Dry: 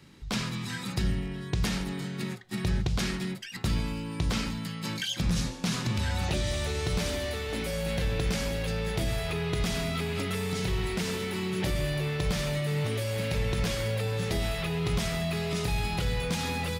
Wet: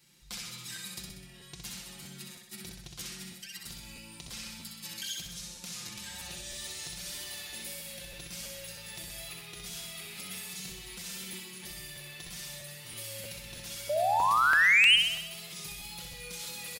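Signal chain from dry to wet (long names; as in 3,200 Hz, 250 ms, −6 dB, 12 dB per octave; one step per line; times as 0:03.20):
tape wow and flutter 24 cents
comb filter 5.7 ms, depth 76%
downward compressor, threshold −28 dBFS, peak gain reduction 8.5 dB
sound drawn into the spectrogram rise, 0:13.89–0:14.96, 570–3,200 Hz −11 dBFS
first-order pre-emphasis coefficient 0.9
soft clipping −16.5 dBFS, distortion −21 dB
flutter between parallel walls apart 10.9 metres, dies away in 0.82 s
regular buffer underruns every 0.32 s, samples 512, repeat, from 0:00.43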